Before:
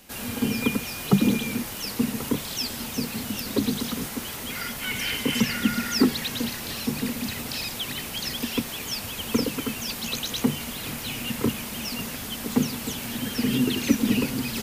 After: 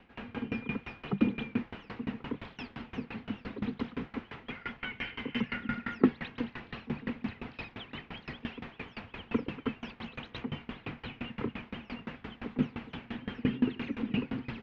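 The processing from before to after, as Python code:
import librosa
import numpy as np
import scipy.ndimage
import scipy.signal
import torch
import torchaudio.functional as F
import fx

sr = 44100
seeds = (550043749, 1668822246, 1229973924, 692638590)

y = scipy.signal.sosfilt(scipy.signal.butter(4, 2600.0, 'lowpass', fs=sr, output='sos'), x)
y = fx.notch(y, sr, hz=590.0, q=12.0)
y = fx.tremolo_decay(y, sr, direction='decaying', hz=5.8, depth_db=24)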